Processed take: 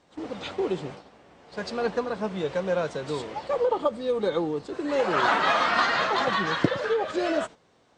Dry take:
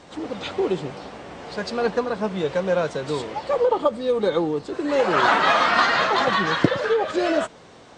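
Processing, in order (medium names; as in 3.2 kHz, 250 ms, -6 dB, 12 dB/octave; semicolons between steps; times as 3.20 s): gate -34 dBFS, range -11 dB; trim -4.5 dB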